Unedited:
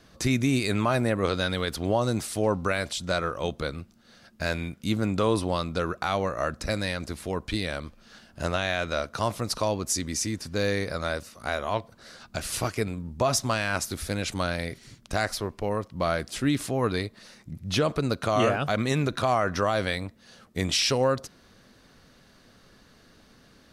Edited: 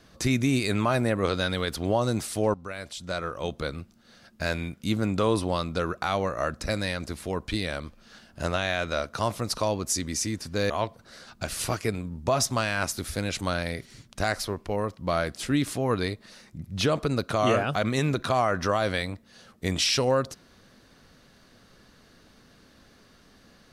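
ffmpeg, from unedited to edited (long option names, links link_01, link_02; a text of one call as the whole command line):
ffmpeg -i in.wav -filter_complex "[0:a]asplit=3[link_01][link_02][link_03];[link_01]atrim=end=2.54,asetpts=PTS-STARTPTS,afade=type=out:start_time=2.536:duration=0.004:curve=hsin:silence=0.188365[link_04];[link_02]atrim=start=2.54:end=10.702,asetpts=PTS-STARTPTS,afade=type=in:duration=1.2:silence=0.188365[link_05];[link_03]atrim=start=11.628[link_06];[link_04][link_05]concat=n=2:v=0:a=1[link_07];[link_07][link_06]acrossfade=duration=0.004:curve1=hsin:curve2=hsin" out.wav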